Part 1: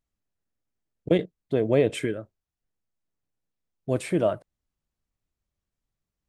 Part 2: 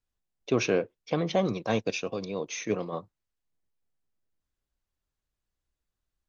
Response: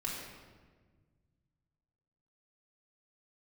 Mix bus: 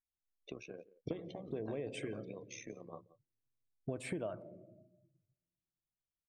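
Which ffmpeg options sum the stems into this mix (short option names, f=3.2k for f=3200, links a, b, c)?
-filter_complex "[0:a]acompressor=threshold=-31dB:ratio=2,volume=-3dB,asplit=2[a][b];[b]volume=-16.5dB[c];[1:a]acompressor=threshold=-34dB:ratio=16,tremolo=f=69:d=0.75,volume=-7dB,asplit=3[d][e][f];[e]volume=-15dB[g];[f]apad=whole_len=277075[h];[a][h]sidechaincompress=threshold=-46dB:ratio=8:attack=5.7:release=994[i];[2:a]atrim=start_sample=2205[j];[c][j]afir=irnorm=-1:irlink=0[k];[g]aecho=0:1:175:1[l];[i][d][k][l]amix=inputs=4:normalize=0,afftdn=nr=18:nf=-55,acompressor=threshold=-36dB:ratio=6"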